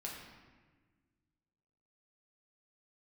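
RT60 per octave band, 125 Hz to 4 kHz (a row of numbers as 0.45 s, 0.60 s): 2.3 s, 2.1 s, 1.5 s, 1.3 s, 1.3 s, 0.95 s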